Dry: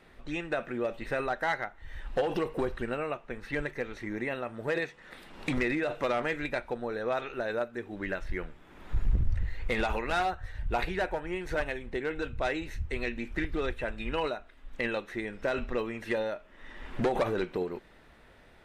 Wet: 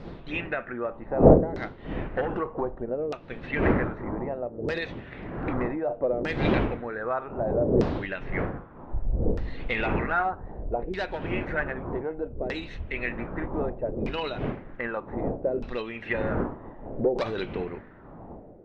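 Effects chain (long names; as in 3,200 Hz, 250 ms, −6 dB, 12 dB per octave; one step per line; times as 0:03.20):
wind on the microphone 370 Hz −31 dBFS
auto-filter low-pass saw down 0.64 Hz 410–5,100 Hz
level −1 dB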